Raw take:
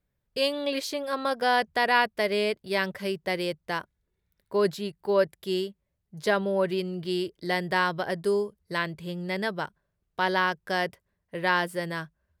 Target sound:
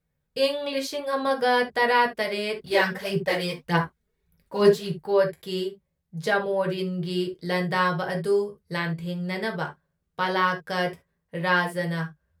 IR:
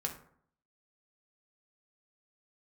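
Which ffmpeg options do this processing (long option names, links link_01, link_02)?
-filter_complex "[0:a]asettb=1/sr,asplit=3[link_01][link_02][link_03];[link_01]atrim=end=2.584[link_04];[link_02]atrim=start=2.58:end=5.01,asetpts=PTS-STARTPTS,afade=type=in:duration=0.004:curve=qsin,afade=type=out:start_time=2.426:duration=0.004:curve=qsin,aphaser=in_gain=1:out_gain=1:delay=4.9:decay=0.71:speed=1.7:type=sinusoidal[link_05];[link_03]atrim=start=5.006[link_06];[link_04][link_05]acrossfade=duration=0.004:curve1=hsin:curve2=qsin[link_07];[link_07][link_06]acrossfade=duration=0.004:curve1=qsin:curve2=hsin[link_08];[1:a]atrim=start_sample=2205,atrim=end_sample=3528[link_09];[link_08][link_09]afir=irnorm=-1:irlink=0"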